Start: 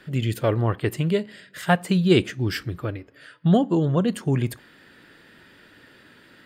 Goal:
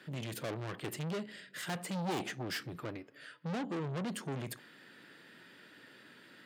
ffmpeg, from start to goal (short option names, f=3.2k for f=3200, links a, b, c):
-filter_complex "[0:a]aeval=exprs='(tanh(31.6*val(0)+0.4)-tanh(0.4))/31.6':c=same,highpass=f=130:w=0.5412,highpass=f=130:w=1.3066,aemphasis=mode=reproduction:type=75kf,crystalizer=i=4:c=0,asettb=1/sr,asplit=3[a][b][c];[a]atrim=end=1.954[d];[b]atrim=start=1.95:end=2.42,asetpts=PTS-STARTPTS,afade=t=in:d=0.004:c=qsin,afade=t=out:st=0.466:d=0.004:c=qsin,equalizer=f=780:t=o:w=0.39:g=13.5[e];[c]atrim=start=2.416[f];[d][e]acrossfade=d=0.004:c1=hsin:c2=qsin[g];[g][f]acrossfade=d=0.004:c1=qsin:c2=hsin,volume=-5dB"